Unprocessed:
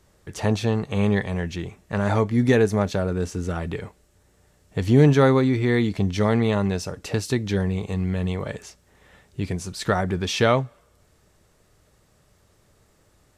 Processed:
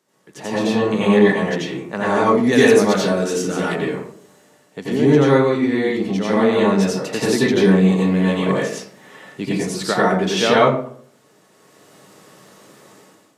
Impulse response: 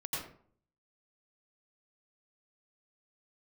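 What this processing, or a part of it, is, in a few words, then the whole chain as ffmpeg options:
far laptop microphone: -filter_complex "[1:a]atrim=start_sample=2205[s0];[0:a][s0]afir=irnorm=-1:irlink=0,highpass=f=190:w=0.5412,highpass=f=190:w=1.3066,dynaudnorm=f=480:g=3:m=6.31,asplit=3[s1][s2][s3];[s1]afade=t=out:st=2.51:d=0.02[s4];[s2]adynamicequalizer=threshold=0.0251:dfrequency=2000:dqfactor=0.7:tfrequency=2000:tqfactor=0.7:attack=5:release=100:ratio=0.375:range=4:mode=boostabove:tftype=highshelf,afade=t=in:st=2.51:d=0.02,afade=t=out:st=3.74:d=0.02[s5];[s3]afade=t=in:st=3.74:d=0.02[s6];[s4][s5][s6]amix=inputs=3:normalize=0,volume=0.841"

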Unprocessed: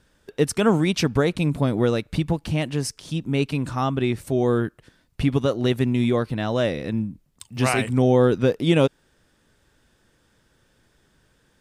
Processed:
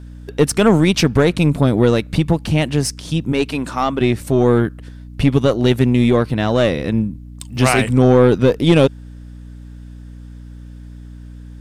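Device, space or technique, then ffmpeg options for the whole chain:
valve amplifier with mains hum: -filter_complex "[0:a]asettb=1/sr,asplit=3[s0][s1][s2];[s0]atrim=end=3.324[s3];[s1]atrim=start=3.32:end=4.01,asetpts=PTS-STARTPTS,afade=t=in:d=0.004:c=qsin,afade=t=out:st=0.686:d=0.004:c=qsin,highpass=260[s4];[s2]atrim=start=4.006[s5];[s3][s4]acrossfade=d=0.004:c1=hsin:c2=qsin[s6];[s6][s5]acrossfade=d=0.004:c1=qsin:c2=hsin,aeval=exprs='(tanh(3.98*val(0)+0.35)-tanh(0.35))/3.98':c=same,aeval=exprs='val(0)+0.00794*(sin(2*PI*60*n/s)+sin(2*PI*2*60*n/s)/2+sin(2*PI*3*60*n/s)/3+sin(2*PI*4*60*n/s)/4+sin(2*PI*5*60*n/s)/5)':c=same,volume=2.66"

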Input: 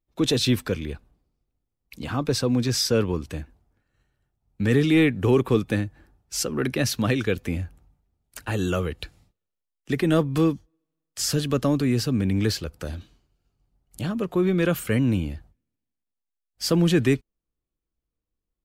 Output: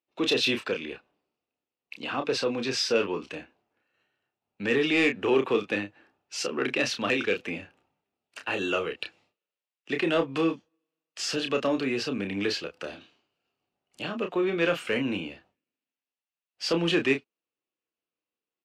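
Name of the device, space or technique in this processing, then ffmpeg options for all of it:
intercom: -filter_complex "[0:a]highpass=370,lowpass=4400,equalizer=f=2700:t=o:w=0.29:g=9,asoftclip=type=tanh:threshold=0.2,asplit=2[s0][s1];[s1]adelay=30,volume=0.473[s2];[s0][s2]amix=inputs=2:normalize=0"

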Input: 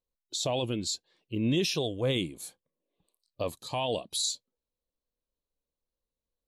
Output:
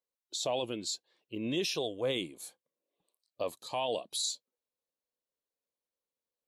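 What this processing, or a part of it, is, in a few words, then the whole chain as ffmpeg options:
filter by subtraction: -filter_complex "[0:a]asplit=2[s0][s1];[s1]lowpass=560,volume=-1[s2];[s0][s2]amix=inputs=2:normalize=0,volume=0.668"

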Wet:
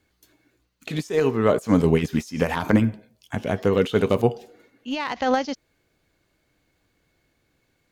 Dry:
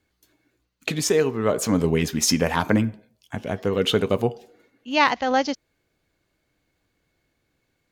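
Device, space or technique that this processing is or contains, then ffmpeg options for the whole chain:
de-esser from a sidechain: -filter_complex "[0:a]asplit=2[s0][s1];[s1]highpass=6800,apad=whole_len=349023[s2];[s0][s2]sidechaincompress=threshold=0.00562:ratio=16:attack=0.95:release=55,volume=1.5"

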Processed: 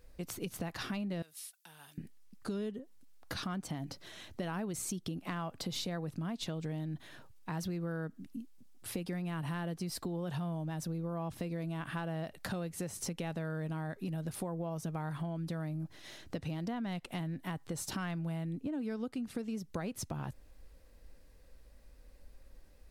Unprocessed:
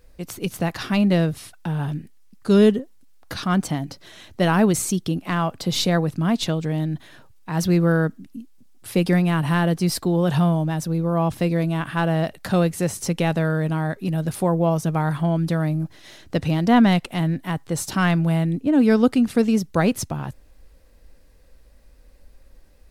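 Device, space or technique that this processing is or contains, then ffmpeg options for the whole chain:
serial compression, peaks first: -filter_complex "[0:a]asettb=1/sr,asplit=3[s0][s1][s2];[s0]atrim=end=1.224[s3];[s1]atrim=start=1.22:end=1.98,asetpts=PTS-STARTPTS,afade=t=in:d=0.004:c=qsin,afade=t=out:st=0.756:d=0.004:c=qsin,aderivative[s4];[s2]atrim=start=1.976[s5];[s3][s4]acrossfade=d=0.004:c1=hsin:c2=qsin[s6];[s6][s5]acrossfade=d=0.004:c1=qsin:c2=hsin,acompressor=threshold=0.0562:ratio=5,acompressor=threshold=0.0251:ratio=2,volume=0.501"

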